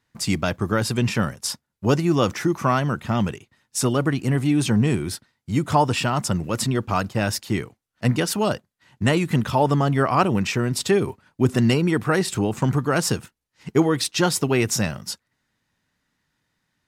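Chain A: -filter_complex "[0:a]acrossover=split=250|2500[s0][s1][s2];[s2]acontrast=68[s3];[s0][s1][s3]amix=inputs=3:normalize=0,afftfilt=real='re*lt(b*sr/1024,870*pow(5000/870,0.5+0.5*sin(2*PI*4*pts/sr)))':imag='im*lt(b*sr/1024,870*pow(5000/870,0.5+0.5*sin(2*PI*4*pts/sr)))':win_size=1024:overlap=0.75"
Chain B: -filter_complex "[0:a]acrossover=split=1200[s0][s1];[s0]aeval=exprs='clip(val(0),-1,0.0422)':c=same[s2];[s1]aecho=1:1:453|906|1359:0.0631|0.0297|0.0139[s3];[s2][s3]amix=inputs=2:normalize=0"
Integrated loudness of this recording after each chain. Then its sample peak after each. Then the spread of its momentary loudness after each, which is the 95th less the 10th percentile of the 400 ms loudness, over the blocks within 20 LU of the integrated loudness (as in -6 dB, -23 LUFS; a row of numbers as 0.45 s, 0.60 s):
-22.5 LUFS, -24.0 LUFS; -3.0 dBFS, -4.5 dBFS; 8 LU, 8 LU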